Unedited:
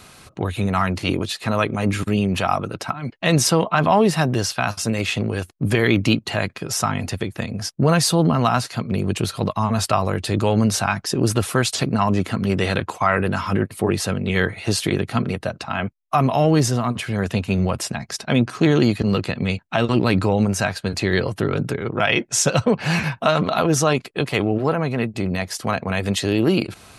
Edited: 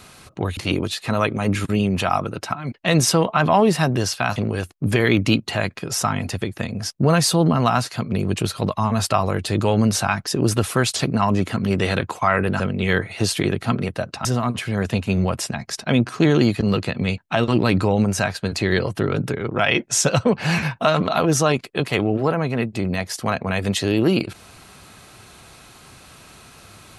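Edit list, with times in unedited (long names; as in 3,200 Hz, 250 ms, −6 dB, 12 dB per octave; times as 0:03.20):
0:00.57–0:00.95: remove
0:04.74–0:05.15: remove
0:13.39–0:14.07: remove
0:15.72–0:16.66: remove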